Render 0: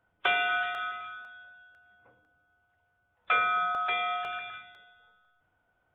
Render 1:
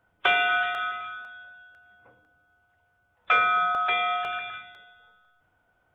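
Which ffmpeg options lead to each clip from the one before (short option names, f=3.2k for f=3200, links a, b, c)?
-af "acontrast=42,volume=-1dB"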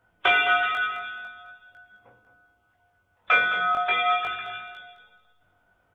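-filter_complex "[0:a]asplit=2[a][b];[b]aecho=0:1:214|428|642:0.282|0.0705|0.0176[c];[a][c]amix=inputs=2:normalize=0,flanger=delay=18:depth=3.6:speed=0.43,volume=5dB"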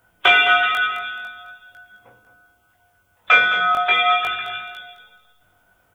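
-af "crystalizer=i=2.5:c=0,volume=4.5dB"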